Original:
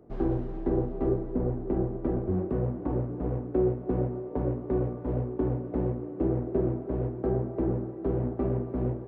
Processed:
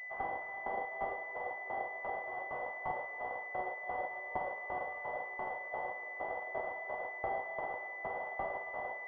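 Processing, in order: steep high-pass 740 Hz 36 dB/octave; class-D stage that switches slowly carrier 2 kHz; trim +10 dB

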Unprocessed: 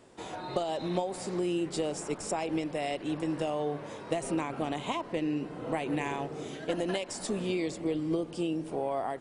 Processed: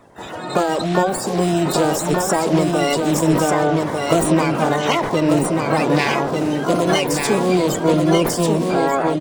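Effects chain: coarse spectral quantiser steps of 30 dB; harmony voices +12 st -8 dB; level rider gain up to 5.5 dB; delay 1193 ms -4 dB; decay stretcher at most 58 dB/s; trim +8 dB

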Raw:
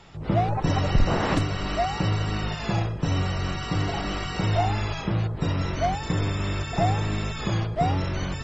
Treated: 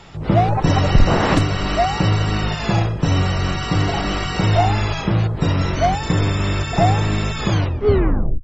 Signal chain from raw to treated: tape stop on the ending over 0.93 s; trim +7.5 dB

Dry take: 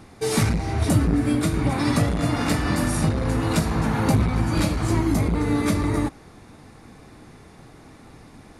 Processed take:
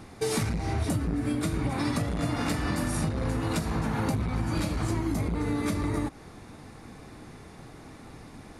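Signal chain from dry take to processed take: compression, threshold -25 dBFS, peak gain reduction 11.5 dB

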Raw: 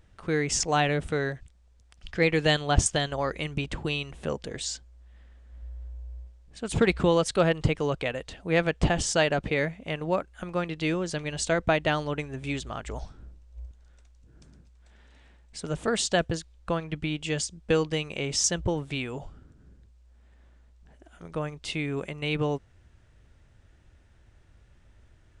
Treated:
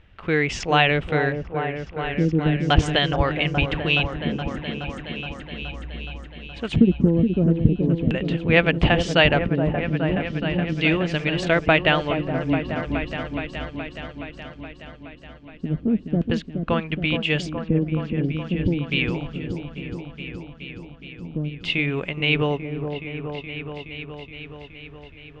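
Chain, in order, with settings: LFO low-pass square 0.37 Hz 250–2800 Hz; delay with an opening low-pass 421 ms, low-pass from 750 Hz, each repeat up 1 oct, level -6 dB; trim +4.5 dB

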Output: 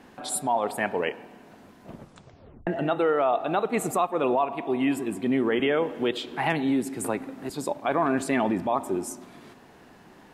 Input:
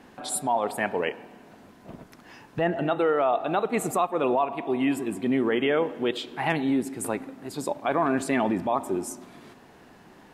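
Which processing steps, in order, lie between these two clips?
1.92 s: tape stop 0.75 s; 5.59–7.50 s: three bands compressed up and down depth 40%

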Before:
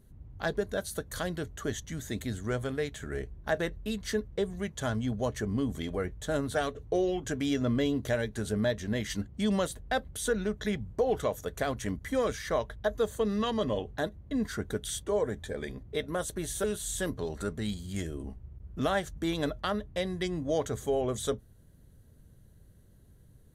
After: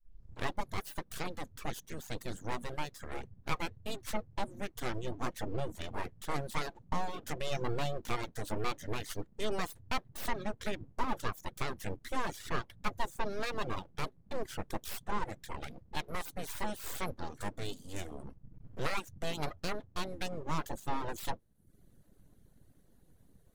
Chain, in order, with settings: tape start-up on the opening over 0.56 s; full-wave rectifier; reverb removal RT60 0.61 s; trim -2 dB

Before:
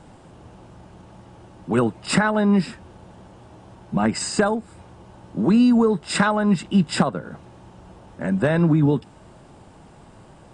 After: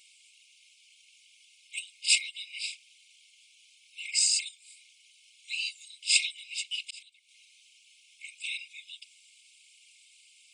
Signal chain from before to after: whisper effect; brick-wall FIR high-pass 2.1 kHz; 6.53–7.29 s: slow attack 644 ms; trim +4 dB

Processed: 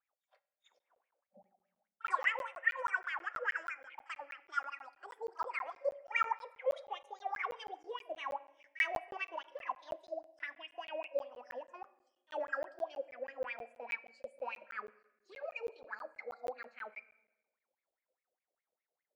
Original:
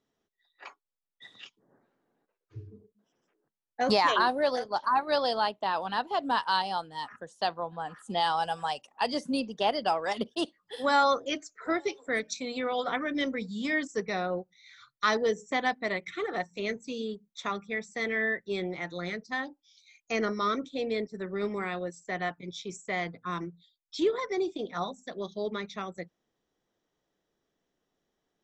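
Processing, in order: gliding tape speed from 190% -> 107%; wah-wah 4.9 Hz 520–2400 Hz, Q 10; pre-echo 39 ms -22.5 dB; on a send at -15 dB: reverberation RT60 1.0 s, pre-delay 8 ms; on the sum: crackling interface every 0.16 s, samples 512, zero, from 0.79 s; trim +2.5 dB

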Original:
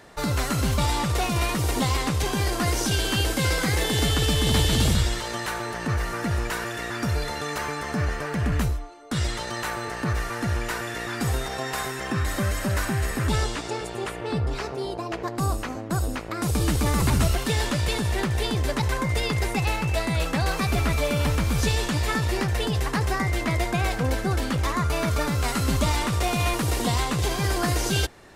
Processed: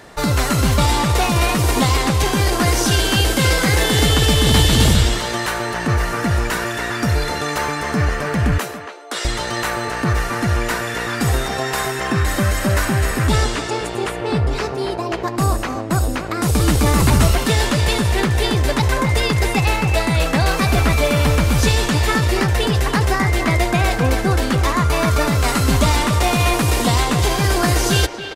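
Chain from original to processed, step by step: 8.58–9.25 s: high-pass 370 Hz 24 dB/octave; speakerphone echo 280 ms, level -8 dB; trim +7.5 dB

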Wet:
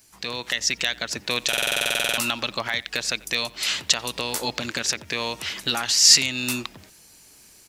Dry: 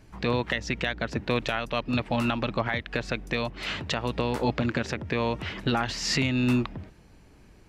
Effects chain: tone controls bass 0 dB, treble +14 dB; speakerphone echo 90 ms, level -21 dB; level rider gain up to 6 dB; tilt EQ +3 dB/octave; buffer glitch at 1.48 s, samples 2048, times 14; trim -6 dB

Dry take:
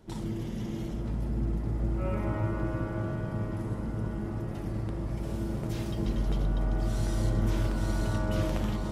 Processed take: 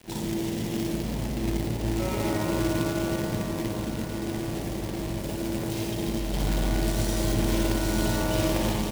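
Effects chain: 3.61–6.34 s: compression 6:1, threshold -29 dBFS, peak gain reduction 6 dB; bass shelf 190 Hz -10.5 dB; reverse bouncing-ball echo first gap 60 ms, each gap 1.5×, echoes 5; companded quantiser 4-bit; peaking EQ 1.3 kHz -8 dB 0.6 oct; trim +7 dB

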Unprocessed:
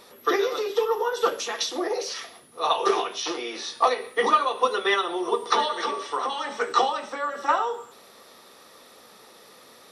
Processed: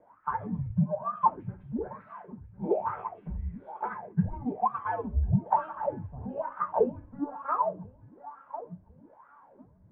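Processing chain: thinning echo 1049 ms, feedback 43%, high-pass 220 Hz, level -15 dB; wah-wah 1.1 Hz 340–1600 Hz, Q 14; mistuned SSB -290 Hz 150–2400 Hz; trim +7 dB

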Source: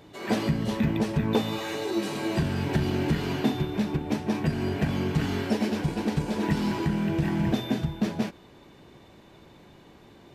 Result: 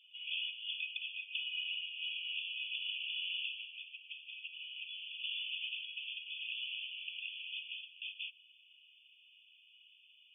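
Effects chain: Chebyshev high-pass 2.5 kHz, order 10; 3.72–5.24 s: compression, threshold -47 dBFS, peak gain reduction 7 dB; brick-wall FIR low-pass 3.5 kHz; trim +6 dB

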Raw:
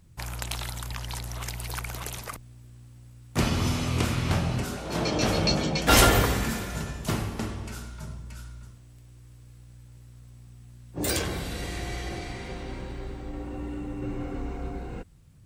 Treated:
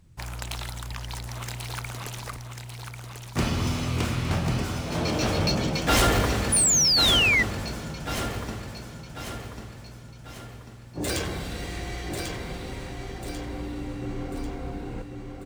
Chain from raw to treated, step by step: median filter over 3 samples; on a send: feedback delay 1093 ms, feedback 46%, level -6 dB; on the sum: painted sound fall, 6.52–7.43 s, 1.9–10 kHz -19 dBFS; saturation -13.5 dBFS, distortion -17 dB

